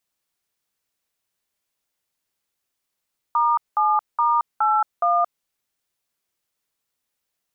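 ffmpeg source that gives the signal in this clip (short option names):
-f lavfi -i "aevalsrc='0.119*clip(min(mod(t,0.418),0.224-mod(t,0.418))/0.002,0,1)*(eq(floor(t/0.418),0)*(sin(2*PI*941*mod(t,0.418))+sin(2*PI*1209*mod(t,0.418)))+eq(floor(t/0.418),1)*(sin(2*PI*852*mod(t,0.418))+sin(2*PI*1209*mod(t,0.418)))+eq(floor(t/0.418),2)*(sin(2*PI*941*mod(t,0.418))+sin(2*PI*1209*mod(t,0.418)))+eq(floor(t/0.418),3)*(sin(2*PI*852*mod(t,0.418))+sin(2*PI*1336*mod(t,0.418)))+eq(floor(t/0.418),4)*(sin(2*PI*697*mod(t,0.418))+sin(2*PI*1209*mod(t,0.418))))':d=2.09:s=44100"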